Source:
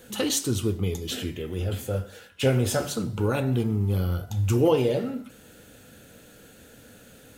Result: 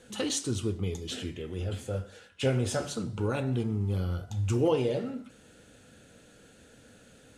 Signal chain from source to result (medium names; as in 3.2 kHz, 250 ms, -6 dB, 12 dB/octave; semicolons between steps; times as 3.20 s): low-pass 9.6 kHz 24 dB/octave; trim -5 dB